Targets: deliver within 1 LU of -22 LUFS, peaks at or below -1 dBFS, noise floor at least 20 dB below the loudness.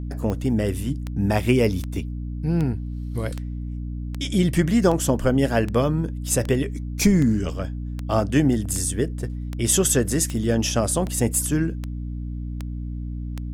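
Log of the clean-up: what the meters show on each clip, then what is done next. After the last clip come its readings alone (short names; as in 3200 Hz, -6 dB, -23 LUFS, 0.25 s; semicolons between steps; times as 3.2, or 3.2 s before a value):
clicks 18; hum 60 Hz; harmonics up to 300 Hz; hum level -27 dBFS; loudness -23.5 LUFS; peak -5.5 dBFS; loudness target -22.0 LUFS
-> de-click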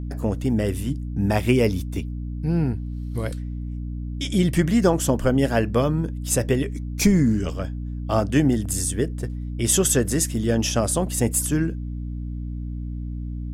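clicks 0; hum 60 Hz; harmonics up to 300 Hz; hum level -27 dBFS
-> notches 60/120/180/240/300 Hz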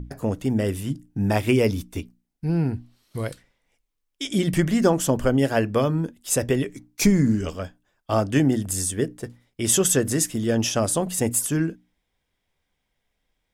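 hum none; loudness -23.0 LUFS; peak -6.0 dBFS; loudness target -22.0 LUFS
-> gain +1 dB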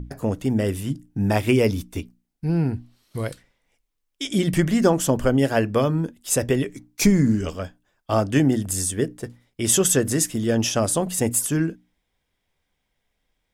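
loudness -22.0 LUFS; peak -5.0 dBFS; noise floor -76 dBFS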